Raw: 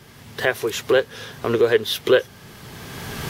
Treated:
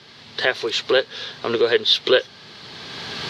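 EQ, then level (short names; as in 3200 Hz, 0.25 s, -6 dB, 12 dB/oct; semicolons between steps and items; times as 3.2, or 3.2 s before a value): HPF 130 Hz 6 dB/oct; synth low-pass 4200 Hz, resonance Q 3.6; low shelf 170 Hz -7.5 dB; 0.0 dB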